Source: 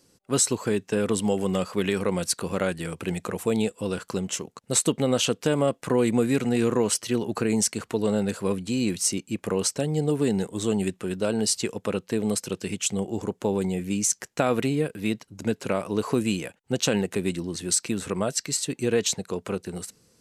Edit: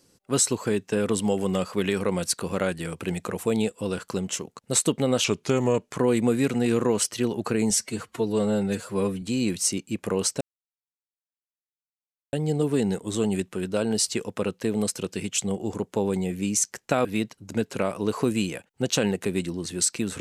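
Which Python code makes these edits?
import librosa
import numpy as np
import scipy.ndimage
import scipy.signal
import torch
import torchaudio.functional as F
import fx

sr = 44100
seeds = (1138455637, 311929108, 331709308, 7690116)

y = fx.edit(x, sr, fx.speed_span(start_s=5.24, length_s=0.63, speed=0.87),
    fx.stretch_span(start_s=7.61, length_s=1.01, factor=1.5),
    fx.insert_silence(at_s=9.81, length_s=1.92),
    fx.cut(start_s=14.53, length_s=0.42), tone=tone)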